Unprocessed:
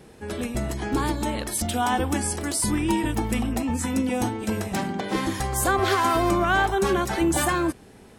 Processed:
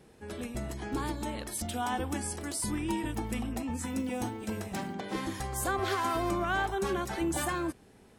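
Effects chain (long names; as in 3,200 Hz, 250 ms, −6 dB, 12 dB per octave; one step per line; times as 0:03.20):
0:03.84–0:04.94: noise that follows the level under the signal 33 dB
level −9 dB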